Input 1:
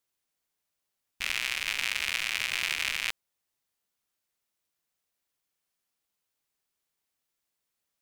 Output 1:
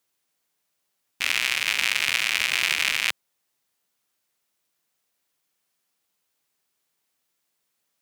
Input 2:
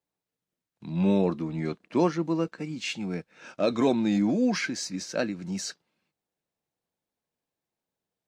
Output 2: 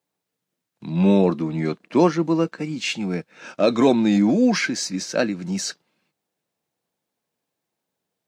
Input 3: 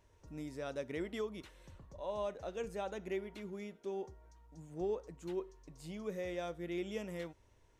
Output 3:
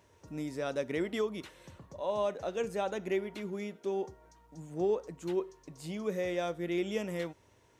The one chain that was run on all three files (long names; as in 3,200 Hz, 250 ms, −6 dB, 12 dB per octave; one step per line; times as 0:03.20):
high-pass filter 110 Hz 12 dB per octave
level +7 dB